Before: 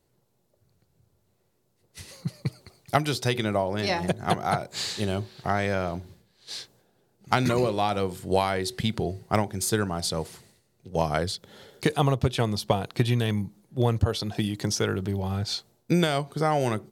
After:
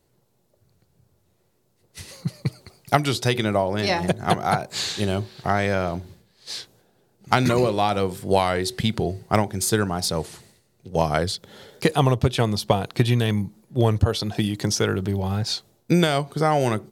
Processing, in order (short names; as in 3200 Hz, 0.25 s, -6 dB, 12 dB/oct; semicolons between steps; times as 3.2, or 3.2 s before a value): record warp 33 1/3 rpm, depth 100 cents; gain +4 dB